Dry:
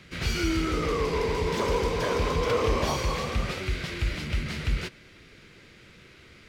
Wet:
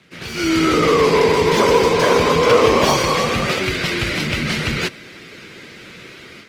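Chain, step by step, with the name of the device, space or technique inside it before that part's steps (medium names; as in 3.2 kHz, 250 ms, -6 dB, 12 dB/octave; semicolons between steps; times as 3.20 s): video call (high-pass 160 Hz 12 dB/octave; level rider gain up to 13.5 dB; trim +1 dB; Opus 20 kbps 48 kHz)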